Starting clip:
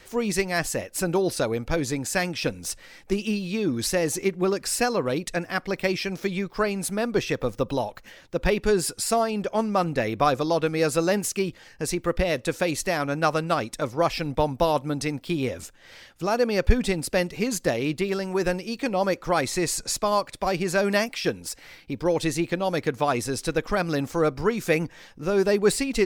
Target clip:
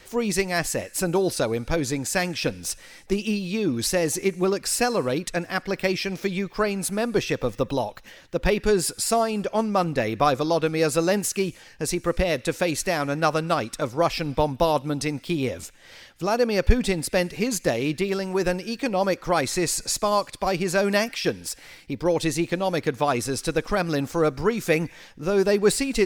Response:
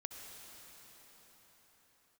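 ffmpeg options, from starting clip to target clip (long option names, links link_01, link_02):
-filter_complex "[0:a]asplit=2[link_01][link_02];[link_02]highpass=frequency=1400:width=0.5412,highpass=frequency=1400:width=1.3066[link_03];[1:a]atrim=start_sample=2205,afade=type=out:start_time=0.42:duration=0.01,atrim=end_sample=18963,asetrate=48510,aresample=44100[link_04];[link_03][link_04]afir=irnorm=-1:irlink=0,volume=-12dB[link_05];[link_01][link_05]amix=inputs=2:normalize=0,volume=1dB"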